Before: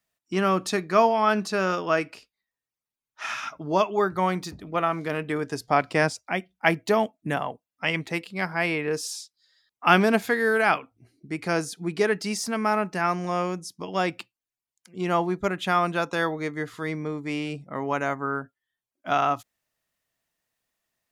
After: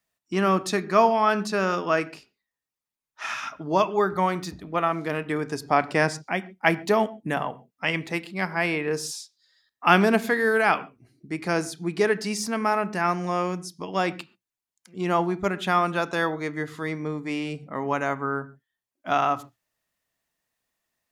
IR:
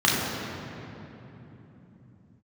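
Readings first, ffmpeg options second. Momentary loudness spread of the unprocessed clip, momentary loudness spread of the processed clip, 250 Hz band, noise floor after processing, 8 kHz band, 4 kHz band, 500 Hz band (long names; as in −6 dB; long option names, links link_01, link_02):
11 LU, 11 LU, +0.5 dB, below −85 dBFS, 0.0 dB, −0.5 dB, +0.5 dB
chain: -filter_complex "[0:a]asplit=2[link_01][link_02];[1:a]atrim=start_sample=2205,afade=type=out:start_time=0.19:duration=0.01,atrim=end_sample=8820,highshelf=frequency=6300:gain=-11.5[link_03];[link_02][link_03]afir=irnorm=-1:irlink=0,volume=-30.5dB[link_04];[link_01][link_04]amix=inputs=2:normalize=0"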